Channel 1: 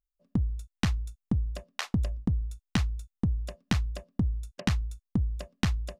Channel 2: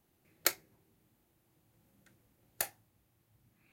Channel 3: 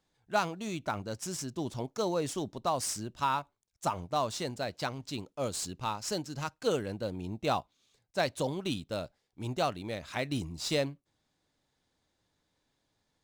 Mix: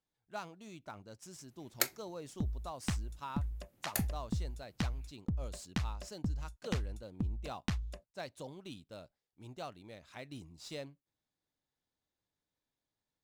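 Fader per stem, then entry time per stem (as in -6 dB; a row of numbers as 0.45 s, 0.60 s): -8.5 dB, -1.5 dB, -14.0 dB; 2.05 s, 1.35 s, 0.00 s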